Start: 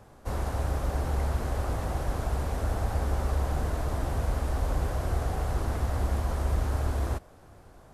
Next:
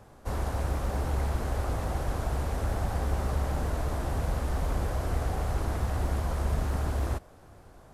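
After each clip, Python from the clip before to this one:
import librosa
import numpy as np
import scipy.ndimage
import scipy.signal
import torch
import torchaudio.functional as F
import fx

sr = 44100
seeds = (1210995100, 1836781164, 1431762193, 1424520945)

y = np.minimum(x, 2.0 * 10.0 ** (-24.0 / 20.0) - x)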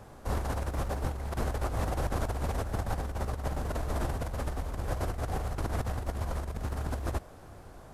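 y = fx.over_compress(x, sr, threshold_db=-31.0, ratio=-0.5)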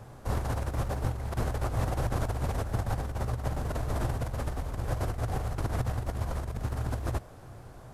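y = fx.peak_eq(x, sr, hz=120.0, db=10.0, octaves=0.34)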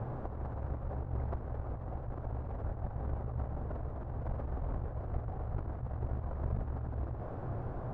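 y = scipy.signal.sosfilt(scipy.signal.butter(2, 1100.0, 'lowpass', fs=sr, output='sos'), x)
y = fx.over_compress(y, sr, threshold_db=-39.0, ratio=-1.0)
y = y * librosa.db_to_amplitude(1.5)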